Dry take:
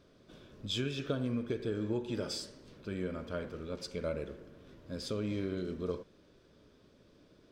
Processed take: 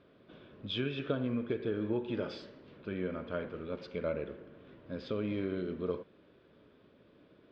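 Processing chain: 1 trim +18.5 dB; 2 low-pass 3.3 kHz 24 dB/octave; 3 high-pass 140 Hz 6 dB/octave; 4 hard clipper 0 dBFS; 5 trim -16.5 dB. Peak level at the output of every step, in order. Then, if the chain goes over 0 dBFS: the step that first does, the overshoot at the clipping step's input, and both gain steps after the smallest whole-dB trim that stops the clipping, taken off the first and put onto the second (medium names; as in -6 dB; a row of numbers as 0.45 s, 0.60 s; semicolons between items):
-1.0 dBFS, -2.0 dBFS, -2.5 dBFS, -2.5 dBFS, -19.0 dBFS; nothing clips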